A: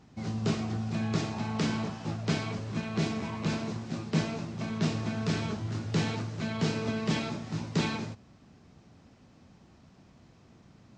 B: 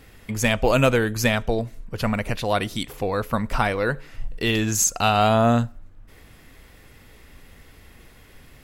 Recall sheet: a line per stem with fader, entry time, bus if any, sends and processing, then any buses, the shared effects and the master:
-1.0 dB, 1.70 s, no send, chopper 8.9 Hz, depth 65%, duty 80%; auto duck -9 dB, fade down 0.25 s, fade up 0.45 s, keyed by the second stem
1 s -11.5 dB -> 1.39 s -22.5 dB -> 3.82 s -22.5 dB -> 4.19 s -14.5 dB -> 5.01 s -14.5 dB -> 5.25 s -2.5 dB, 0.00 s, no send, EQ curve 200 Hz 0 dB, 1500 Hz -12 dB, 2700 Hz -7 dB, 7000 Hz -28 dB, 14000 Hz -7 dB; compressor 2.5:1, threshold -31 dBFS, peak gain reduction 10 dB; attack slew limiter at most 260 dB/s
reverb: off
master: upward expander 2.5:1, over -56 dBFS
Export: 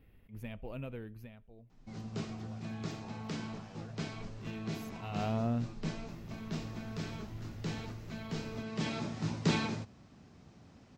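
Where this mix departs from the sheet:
stem A: missing chopper 8.9 Hz, depth 65%, duty 80%; master: missing upward expander 2.5:1, over -56 dBFS

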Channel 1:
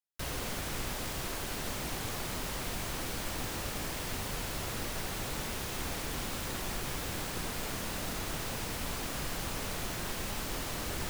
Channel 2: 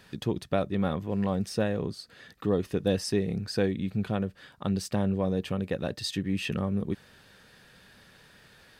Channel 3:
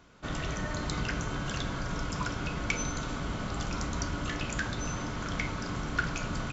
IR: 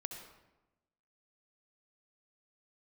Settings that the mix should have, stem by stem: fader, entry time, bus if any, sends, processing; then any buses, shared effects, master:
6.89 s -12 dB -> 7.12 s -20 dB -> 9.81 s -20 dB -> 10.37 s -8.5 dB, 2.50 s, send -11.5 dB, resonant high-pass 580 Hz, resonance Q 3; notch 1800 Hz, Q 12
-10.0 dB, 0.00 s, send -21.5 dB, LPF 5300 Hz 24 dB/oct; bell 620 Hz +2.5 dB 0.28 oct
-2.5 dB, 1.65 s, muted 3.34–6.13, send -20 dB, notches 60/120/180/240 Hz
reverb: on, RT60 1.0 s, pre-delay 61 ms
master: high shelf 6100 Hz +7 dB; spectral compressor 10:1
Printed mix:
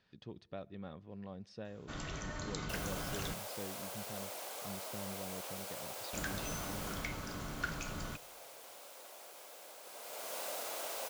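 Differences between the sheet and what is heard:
stem 2 -10.0 dB -> -20.0 dB; stem 3 -2.5 dB -> -9.0 dB; master: missing spectral compressor 10:1

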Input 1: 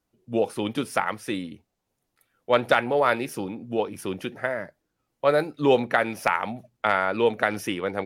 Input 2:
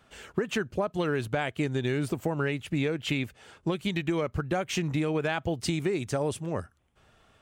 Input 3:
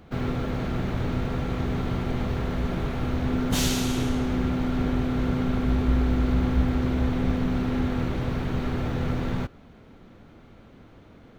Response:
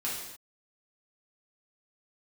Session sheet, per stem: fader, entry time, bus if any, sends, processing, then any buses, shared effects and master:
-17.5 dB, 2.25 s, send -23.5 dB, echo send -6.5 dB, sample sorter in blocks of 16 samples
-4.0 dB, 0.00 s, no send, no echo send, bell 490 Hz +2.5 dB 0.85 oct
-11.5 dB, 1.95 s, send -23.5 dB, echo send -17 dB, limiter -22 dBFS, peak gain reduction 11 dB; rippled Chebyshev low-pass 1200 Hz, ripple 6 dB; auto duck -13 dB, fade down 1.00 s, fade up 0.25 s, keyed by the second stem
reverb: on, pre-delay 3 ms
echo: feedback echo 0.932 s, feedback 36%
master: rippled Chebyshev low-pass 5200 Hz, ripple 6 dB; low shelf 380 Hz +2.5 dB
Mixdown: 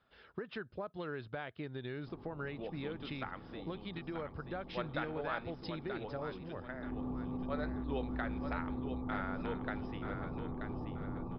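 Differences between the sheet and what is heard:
stem 1: missing sample sorter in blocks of 16 samples; stem 2 -4.0 dB -> -11.0 dB; stem 3 -11.5 dB -> -4.0 dB

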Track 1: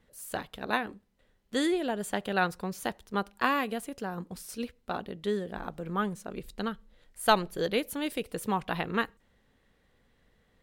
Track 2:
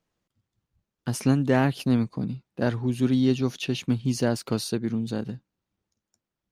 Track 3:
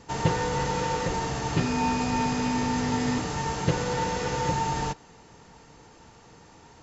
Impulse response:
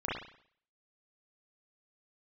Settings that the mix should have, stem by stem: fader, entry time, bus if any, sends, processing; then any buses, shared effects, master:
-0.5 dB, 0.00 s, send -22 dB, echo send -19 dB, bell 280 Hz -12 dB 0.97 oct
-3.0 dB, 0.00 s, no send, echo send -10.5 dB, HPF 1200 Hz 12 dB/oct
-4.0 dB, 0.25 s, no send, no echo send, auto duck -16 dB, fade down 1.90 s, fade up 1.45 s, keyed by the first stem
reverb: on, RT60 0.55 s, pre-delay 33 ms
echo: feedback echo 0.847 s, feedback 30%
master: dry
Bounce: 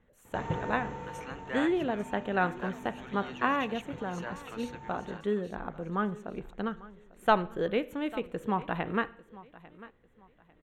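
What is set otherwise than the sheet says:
stem 1: missing bell 280 Hz -12 dB 0.97 oct; master: extra running mean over 9 samples

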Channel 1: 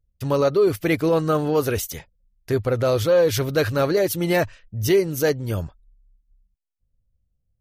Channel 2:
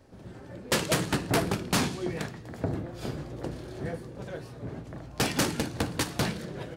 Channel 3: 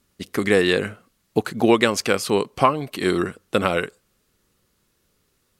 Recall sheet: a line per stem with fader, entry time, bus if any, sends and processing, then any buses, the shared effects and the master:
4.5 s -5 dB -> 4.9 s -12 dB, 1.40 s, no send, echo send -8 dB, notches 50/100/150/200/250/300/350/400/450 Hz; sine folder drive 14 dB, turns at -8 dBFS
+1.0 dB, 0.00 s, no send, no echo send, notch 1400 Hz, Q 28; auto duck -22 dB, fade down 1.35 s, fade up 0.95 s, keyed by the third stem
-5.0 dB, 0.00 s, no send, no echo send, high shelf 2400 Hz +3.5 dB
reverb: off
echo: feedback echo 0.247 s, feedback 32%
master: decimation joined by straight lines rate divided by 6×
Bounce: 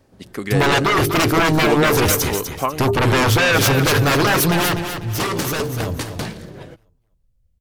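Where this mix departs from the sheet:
stem 1: entry 1.40 s -> 0.30 s; stem 3: missing high shelf 2400 Hz +3.5 dB; master: missing decimation joined by straight lines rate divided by 6×

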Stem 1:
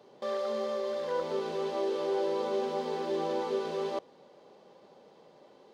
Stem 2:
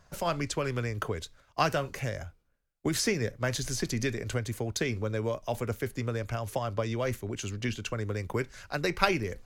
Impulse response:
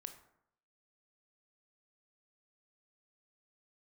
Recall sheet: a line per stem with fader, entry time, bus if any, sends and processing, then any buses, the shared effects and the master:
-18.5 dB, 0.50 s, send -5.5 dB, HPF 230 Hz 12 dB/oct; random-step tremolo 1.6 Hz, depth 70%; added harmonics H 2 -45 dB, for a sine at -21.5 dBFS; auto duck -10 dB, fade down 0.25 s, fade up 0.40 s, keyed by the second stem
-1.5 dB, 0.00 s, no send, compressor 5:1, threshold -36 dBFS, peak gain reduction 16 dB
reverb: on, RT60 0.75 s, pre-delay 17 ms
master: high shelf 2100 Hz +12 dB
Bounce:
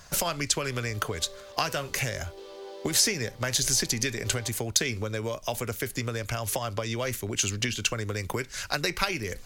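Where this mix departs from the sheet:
stem 1 -18.5 dB -> -8.0 dB; stem 2 -1.5 dB -> +7.0 dB

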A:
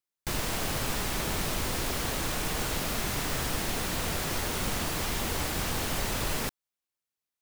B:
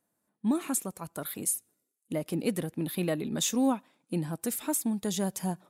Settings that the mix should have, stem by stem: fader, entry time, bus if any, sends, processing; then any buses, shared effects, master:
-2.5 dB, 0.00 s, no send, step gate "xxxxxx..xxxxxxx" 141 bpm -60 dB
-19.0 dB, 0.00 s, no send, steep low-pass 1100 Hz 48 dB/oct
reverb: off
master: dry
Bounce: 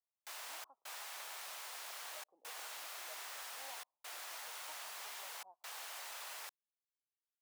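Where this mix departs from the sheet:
stem A -2.5 dB -> -14.0 dB; master: extra HPF 700 Hz 24 dB/oct

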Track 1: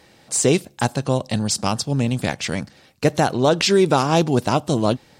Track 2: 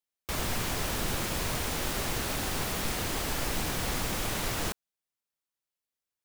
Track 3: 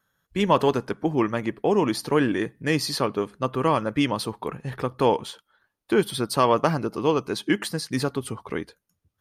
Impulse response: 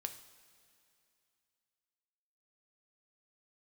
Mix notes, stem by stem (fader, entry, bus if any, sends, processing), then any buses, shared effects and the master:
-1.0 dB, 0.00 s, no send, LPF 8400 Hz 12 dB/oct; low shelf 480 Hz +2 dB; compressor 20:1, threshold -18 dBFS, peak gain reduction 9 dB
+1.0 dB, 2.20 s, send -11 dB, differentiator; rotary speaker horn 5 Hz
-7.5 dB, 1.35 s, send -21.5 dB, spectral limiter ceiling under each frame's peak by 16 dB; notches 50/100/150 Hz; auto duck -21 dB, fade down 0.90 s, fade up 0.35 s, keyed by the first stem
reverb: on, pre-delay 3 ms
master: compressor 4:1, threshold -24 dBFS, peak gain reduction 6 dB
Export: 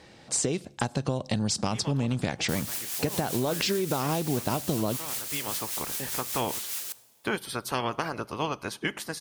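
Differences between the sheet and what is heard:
stem 3: missing notches 50/100/150 Hz; reverb return +8.0 dB

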